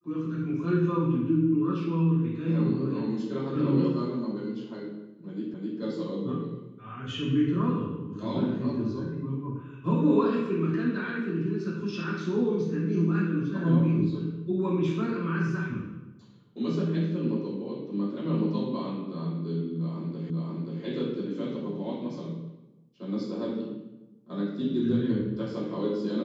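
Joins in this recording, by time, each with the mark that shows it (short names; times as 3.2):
5.54 repeat of the last 0.26 s
20.3 repeat of the last 0.53 s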